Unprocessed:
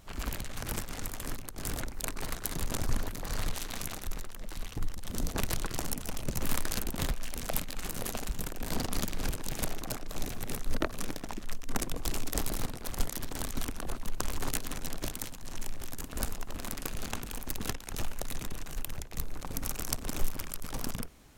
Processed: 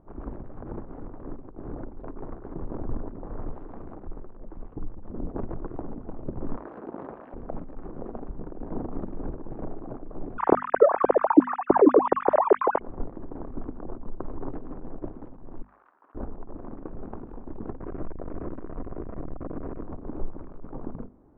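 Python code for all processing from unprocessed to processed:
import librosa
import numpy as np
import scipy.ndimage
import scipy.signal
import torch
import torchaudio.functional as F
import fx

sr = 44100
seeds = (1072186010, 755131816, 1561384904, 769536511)

y = fx.chain(x, sr, fx.weighting(curve='A'),
    fx.env_flatten(amount_pct=70), at=(6.56, 7.34))
y = fx.chain(y, sr, fx.sine_speech(),
    fx.low_shelf(hz=190.0, db=5.0),
    fx.env_flatten(amount_pct=70), at=(10.38, 12.8))
y = fx.chain(y, sr, fx.cvsd(bps=64000),
    fx.highpass_res(hz=1300.0, q=1.6),
    fx.over_compress(threshold_db=-49.0, ratio=-0.5), at=(15.62, 16.15))
y = fx.chain(y, sr, fx.delta_mod(bps=16000, step_db=-27.5),
    fx.notch(hz=850.0, q=5.4), at=(17.8, 19.84))
y = scipy.signal.sosfilt(scipy.signal.butter(4, 1100.0, 'lowpass', fs=sr, output='sos'), y)
y = fx.peak_eq(y, sr, hz=330.0, db=8.5, octaves=1.2)
y = fx.hum_notches(y, sr, base_hz=50, count=5)
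y = F.gain(torch.from_numpy(y), -1.5).numpy()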